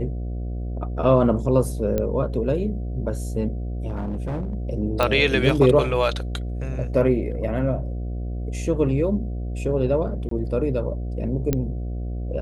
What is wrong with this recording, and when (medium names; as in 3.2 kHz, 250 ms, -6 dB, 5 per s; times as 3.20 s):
buzz 60 Hz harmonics 12 -28 dBFS
1.98 s: pop -12 dBFS
3.87–4.55 s: clipped -23.5 dBFS
5.03 s: pop -8 dBFS
10.29–10.31 s: dropout 23 ms
11.53 s: pop -8 dBFS